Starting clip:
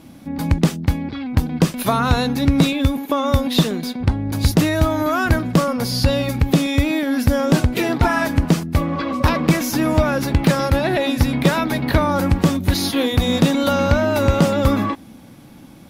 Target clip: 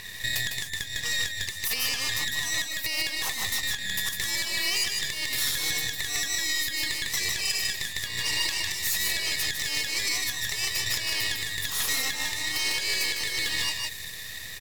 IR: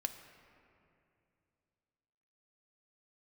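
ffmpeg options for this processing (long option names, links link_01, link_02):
-filter_complex "[0:a]afftfilt=real='real(if(lt(b,272),68*(eq(floor(b/68),0)*2+eq(floor(b/68),1)*0+eq(floor(b/68),2)*3+eq(floor(b/68),3)*1)+mod(b,68),b),0)':imag='imag(if(lt(b,272),68*(eq(floor(b/68),0)*2+eq(floor(b/68),1)*0+eq(floor(b/68),2)*3+eq(floor(b/68),3)*1)+mod(b,68),b),0)':win_size=2048:overlap=0.75,acompressor=threshold=-27dB:ratio=8,aeval=exprs='max(val(0),0)':channel_layout=same,asplit=2[link_01][link_02];[link_02]aecho=0:1:166:0.631[link_03];[link_01][link_03]amix=inputs=2:normalize=0,acompressor=mode=upward:threshold=-45dB:ratio=2.5,equalizer=frequency=100:width_type=o:width=0.67:gain=8,equalizer=frequency=400:width_type=o:width=0.67:gain=4,equalizer=frequency=1000:width_type=o:width=0.67:gain=7,equalizer=frequency=4000:width_type=o:width=0.67:gain=5,aexciter=amount=2.6:drive=4.1:freq=2000,alimiter=limit=-18dB:level=0:latency=1:release=245,asetrate=48000,aresample=44100,adynamicequalizer=threshold=0.01:dfrequency=4700:dqfactor=0.7:tfrequency=4700:tqfactor=0.7:attack=5:release=100:ratio=0.375:range=2.5:mode=boostabove:tftype=highshelf"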